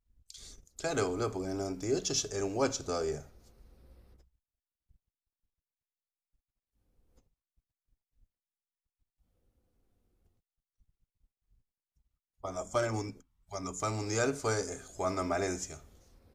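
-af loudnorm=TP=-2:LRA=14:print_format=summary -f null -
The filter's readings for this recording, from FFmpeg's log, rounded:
Input Integrated:    -34.2 LUFS
Input True Peak:     -15.9 dBTP
Input LRA:             6.7 LU
Input Threshold:     -45.2 LUFS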